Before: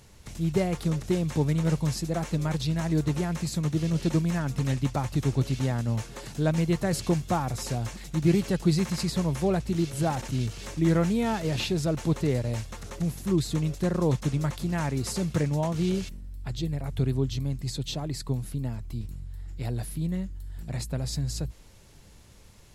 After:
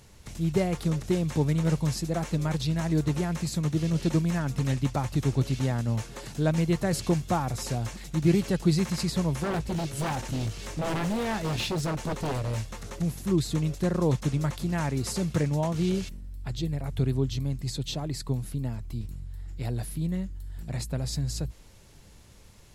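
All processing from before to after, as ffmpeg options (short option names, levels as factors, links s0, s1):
-filter_complex "[0:a]asettb=1/sr,asplit=3[s0][s1][s2];[s0]atrim=end=9.434[s3];[s1]atrim=start=9.43:end=12.94,asetpts=PTS-STARTPTS,afade=t=in:d=0.004:c=qsin,afade=t=out:st=3.506:d=0.004:c=qsin,asplit=2[s4][s5];[s5]adelay=19,volume=0.299[s6];[s4][s6]amix=inputs=2:normalize=0,atrim=end_sample=154791,aeval=exprs='0.0668*(abs(mod(val(0)/0.0668+3,4)-2)-1)':c=same[s7];[s2]atrim=start=12.936[s8];[s3][s7]acrossfade=d=0.004:c1=hsin:c2=qsin[s9];[s9][s8]acrossfade=d=0.004:c1=qsin:c2=hsin"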